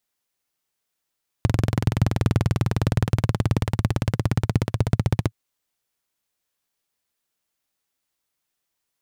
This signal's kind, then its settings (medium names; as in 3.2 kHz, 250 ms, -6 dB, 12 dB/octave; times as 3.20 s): single-cylinder engine model, changing speed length 3.87 s, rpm 2600, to 1800, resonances 110 Hz